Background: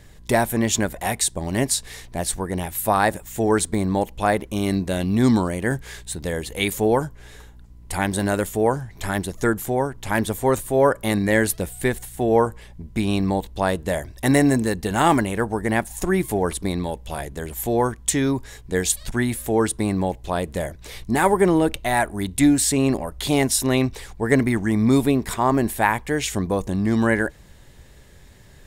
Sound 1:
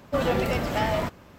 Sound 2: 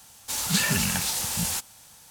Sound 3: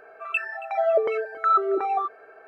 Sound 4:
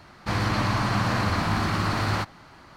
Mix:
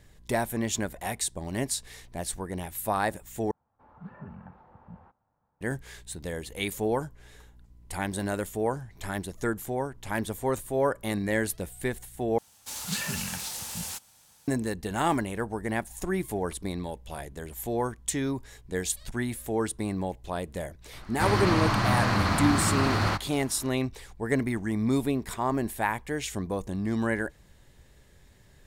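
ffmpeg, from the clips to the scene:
-filter_complex "[2:a]asplit=2[s0][s1];[0:a]volume=0.376[s2];[s0]lowpass=f=1200:w=0.5412,lowpass=f=1200:w=1.3066[s3];[s2]asplit=3[s4][s5][s6];[s4]atrim=end=3.514[s7];[s3]atrim=end=2.1,asetpts=PTS-STARTPTS,volume=0.168[s8];[s5]atrim=start=5.606:end=12.384[s9];[s1]atrim=end=2.1,asetpts=PTS-STARTPTS,volume=0.398[s10];[s6]atrim=start=14.476[s11];[4:a]atrim=end=2.76,asetpts=PTS-STARTPTS,volume=0.944,afade=t=in:d=0.004:c=hsin,afade=t=out:st=2.756:d=0.004:c=hsin,adelay=20930[s12];[s7][s8]acrossfade=d=0.004:c1=hsin:c2=hsin[s13];[s13][s9]acrossfade=d=0.004:c1=hsin:c2=hsin[s14];[s14][s10]acrossfade=d=0.004:c1=hsin:c2=hsin[s15];[s15][s11]acrossfade=d=0.004:c1=hsin:c2=hsin[s16];[s16][s12]amix=inputs=2:normalize=0"

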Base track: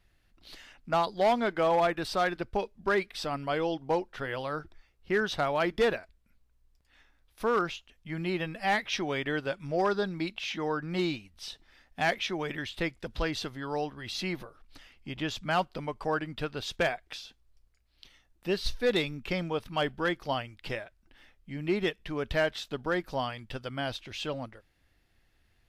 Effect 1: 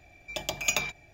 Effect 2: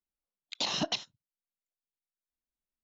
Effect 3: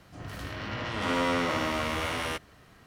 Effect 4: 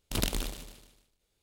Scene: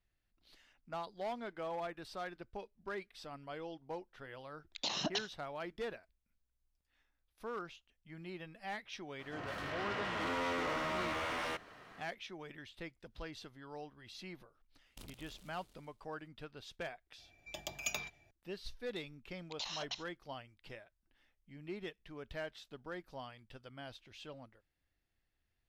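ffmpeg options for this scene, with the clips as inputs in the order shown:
-filter_complex "[2:a]asplit=2[s0][s1];[0:a]volume=0.168[s2];[3:a]asplit=2[s3][s4];[s4]highpass=f=720:p=1,volume=17.8,asoftclip=type=tanh:threshold=0.178[s5];[s3][s5]amix=inputs=2:normalize=0,lowpass=f=1700:p=1,volume=0.501[s6];[4:a]acompressor=threshold=0.0178:ratio=20:attack=0.38:release=570:knee=1:detection=rms[s7];[s1]highpass=830[s8];[s0]atrim=end=2.83,asetpts=PTS-STARTPTS,volume=0.531,afade=t=in:d=0.004:c=hsin,afade=t=out:st=2.826:d=0.004:c=hsin,adelay=4230[s9];[s6]atrim=end=2.86,asetpts=PTS-STARTPTS,volume=0.211,afade=t=in:d=0.004:c=hsin,afade=t=out:st=2.856:d=0.004:c=hsin,adelay=9190[s10];[s7]atrim=end=1.42,asetpts=PTS-STARTPTS,volume=0.422,afade=t=in:d=0.004:c=hsin,afade=t=out:st=1.416:d=0.004:c=hsin,adelay=14860[s11];[1:a]atrim=end=1.13,asetpts=PTS-STARTPTS,volume=0.266,afade=t=in:d=0.004:c=hsin,afade=t=out:st=1.126:d=0.004:c=hsin,adelay=17180[s12];[s8]atrim=end=2.83,asetpts=PTS-STARTPTS,volume=0.316,afade=t=in:d=0.004:c=hsin,afade=t=out:st=2.826:d=0.004:c=hsin,adelay=18990[s13];[s2][s9][s10][s11][s12][s13]amix=inputs=6:normalize=0"

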